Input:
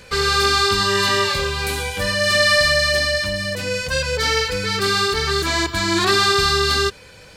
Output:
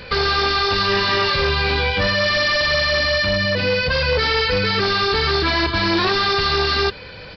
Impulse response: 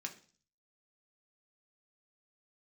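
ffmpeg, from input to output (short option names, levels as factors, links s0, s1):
-af "aresample=11025,volume=10,asoftclip=hard,volume=0.1,aresample=44100,alimiter=limit=0.1:level=0:latency=1:release=13,volume=2.37"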